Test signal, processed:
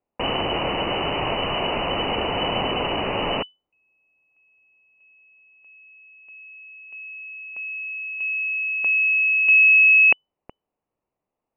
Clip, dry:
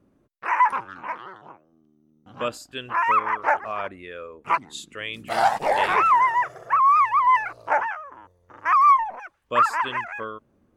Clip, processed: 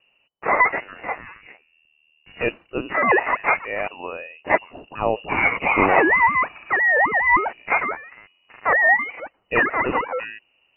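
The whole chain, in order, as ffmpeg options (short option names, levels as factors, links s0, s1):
-af "aexciter=amount=15.6:drive=2.7:freq=2200,lowpass=f=2600:t=q:w=0.5098,lowpass=f=2600:t=q:w=0.6013,lowpass=f=2600:t=q:w=0.9,lowpass=f=2600:t=q:w=2.563,afreqshift=-3000,volume=0.891"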